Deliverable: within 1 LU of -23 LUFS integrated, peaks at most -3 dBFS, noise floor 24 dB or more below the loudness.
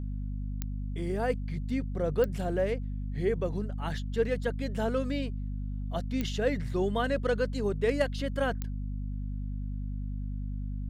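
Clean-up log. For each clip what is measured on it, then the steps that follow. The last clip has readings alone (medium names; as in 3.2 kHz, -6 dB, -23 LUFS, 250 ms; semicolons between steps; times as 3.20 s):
clicks found 4; hum 50 Hz; highest harmonic 250 Hz; hum level -32 dBFS; loudness -32.0 LUFS; peak level -13.0 dBFS; loudness target -23.0 LUFS
-> de-click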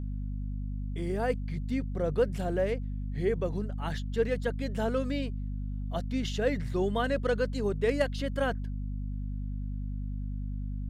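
clicks found 0; hum 50 Hz; highest harmonic 250 Hz; hum level -32 dBFS
-> hum notches 50/100/150/200/250 Hz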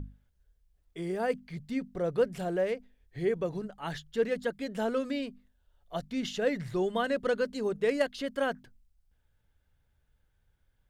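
hum not found; loudness -32.0 LUFS; peak level -13.5 dBFS; loudness target -23.0 LUFS
-> trim +9 dB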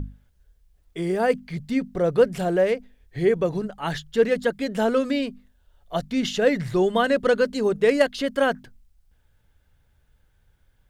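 loudness -23.0 LUFS; peak level -4.5 dBFS; noise floor -64 dBFS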